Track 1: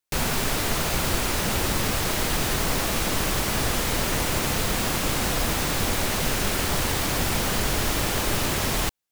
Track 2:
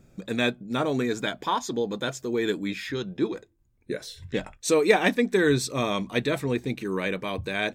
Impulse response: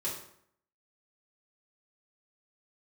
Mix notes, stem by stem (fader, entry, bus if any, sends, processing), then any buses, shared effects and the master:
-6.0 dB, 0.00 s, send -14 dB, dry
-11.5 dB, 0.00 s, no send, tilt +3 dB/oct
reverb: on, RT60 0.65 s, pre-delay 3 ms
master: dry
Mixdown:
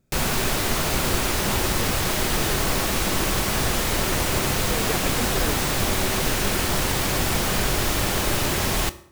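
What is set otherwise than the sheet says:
stem 1 -6.0 dB -> +0.5 dB; stem 2: missing tilt +3 dB/oct

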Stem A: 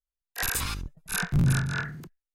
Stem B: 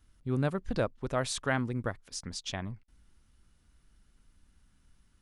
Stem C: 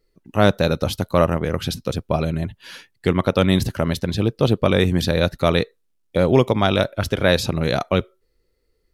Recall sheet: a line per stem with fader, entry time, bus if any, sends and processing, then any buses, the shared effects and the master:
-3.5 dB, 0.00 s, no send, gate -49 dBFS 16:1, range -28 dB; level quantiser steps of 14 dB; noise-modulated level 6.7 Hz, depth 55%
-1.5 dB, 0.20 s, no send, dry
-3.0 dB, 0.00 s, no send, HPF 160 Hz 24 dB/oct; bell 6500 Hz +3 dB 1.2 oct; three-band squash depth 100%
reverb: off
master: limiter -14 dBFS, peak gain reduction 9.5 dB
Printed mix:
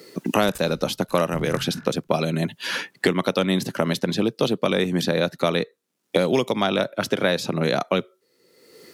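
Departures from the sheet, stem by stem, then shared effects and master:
stem B: muted; master: missing limiter -14 dBFS, peak gain reduction 9.5 dB

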